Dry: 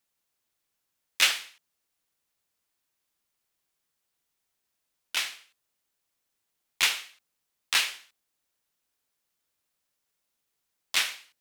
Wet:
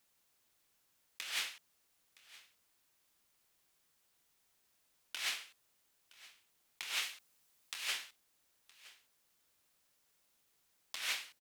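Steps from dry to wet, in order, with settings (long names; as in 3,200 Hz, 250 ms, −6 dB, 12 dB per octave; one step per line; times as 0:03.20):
0:07.02–0:07.88: high-shelf EQ 4,400 Hz +4 dB
brickwall limiter −15.5 dBFS, peak gain reduction 8 dB
compressor whose output falls as the input rises −38 dBFS, ratio −1
single-tap delay 967 ms −20.5 dB
level −2 dB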